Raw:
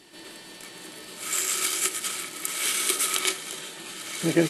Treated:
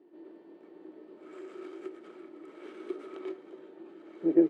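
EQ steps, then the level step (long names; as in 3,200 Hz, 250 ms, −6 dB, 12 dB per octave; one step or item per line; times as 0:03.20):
four-pole ladder band-pass 380 Hz, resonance 55%
+4.5 dB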